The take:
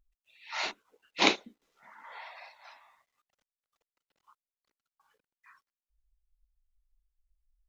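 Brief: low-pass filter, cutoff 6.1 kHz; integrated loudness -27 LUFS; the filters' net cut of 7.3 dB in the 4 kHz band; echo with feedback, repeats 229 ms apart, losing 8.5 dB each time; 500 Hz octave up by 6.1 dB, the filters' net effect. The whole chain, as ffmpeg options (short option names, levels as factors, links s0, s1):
-af "lowpass=6100,equalizer=f=500:t=o:g=8,equalizer=f=4000:t=o:g=-8.5,aecho=1:1:229|458|687|916:0.376|0.143|0.0543|0.0206,volume=1.88"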